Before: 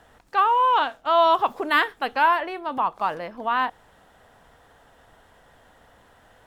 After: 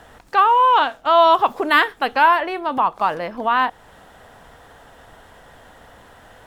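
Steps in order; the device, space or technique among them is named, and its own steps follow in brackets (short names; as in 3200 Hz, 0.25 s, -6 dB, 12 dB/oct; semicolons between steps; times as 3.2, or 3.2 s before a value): parallel compression (in parallel at -2.5 dB: compressor, threshold -34 dBFS, peak gain reduction 18.5 dB); on the sum: gain +4 dB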